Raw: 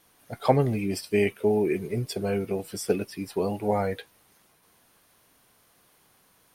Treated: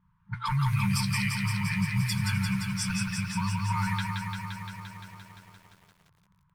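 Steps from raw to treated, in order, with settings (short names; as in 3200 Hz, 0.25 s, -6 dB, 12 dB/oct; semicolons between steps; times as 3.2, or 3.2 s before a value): one diode to ground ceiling -7.5 dBFS; FFT band-reject 200–880 Hz; low-pass opened by the level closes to 460 Hz, open at -29.5 dBFS; notches 60/120 Hz; limiter -28.5 dBFS, peak gain reduction 10.5 dB; lo-fi delay 0.173 s, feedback 80%, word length 11-bit, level -4 dB; gain +7.5 dB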